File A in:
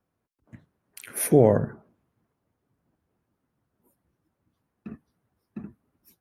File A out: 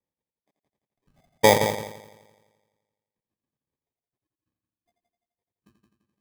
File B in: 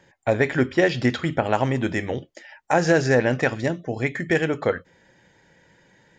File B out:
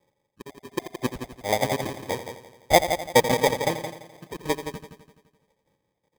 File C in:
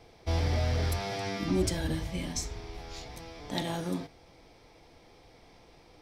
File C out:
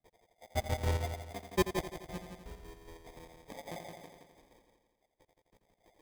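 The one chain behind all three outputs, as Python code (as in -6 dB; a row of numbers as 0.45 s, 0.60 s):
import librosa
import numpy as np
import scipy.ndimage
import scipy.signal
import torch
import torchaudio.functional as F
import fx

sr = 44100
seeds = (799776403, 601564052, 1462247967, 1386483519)

y = fx.spec_dropout(x, sr, seeds[0], share_pct=77)
y = scipy.signal.sosfilt(scipy.signal.cheby1(6, 9, 2200.0, 'lowpass', fs=sr, output='sos'), y)
y = fx.env_lowpass(y, sr, base_hz=790.0, full_db=-27.5)
y = fx.sample_hold(y, sr, seeds[1], rate_hz=1400.0, jitter_pct=0)
y = fx.echo_heads(y, sr, ms=85, heads='first and second', feedback_pct=52, wet_db=-8)
y = fx.upward_expand(y, sr, threshold_db=-42.0, expansion=1.5)
y = y * librosa.db_to_amplitude(6.5)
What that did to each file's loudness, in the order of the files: +1.0 LU, -2.5 LU, -5.0 LU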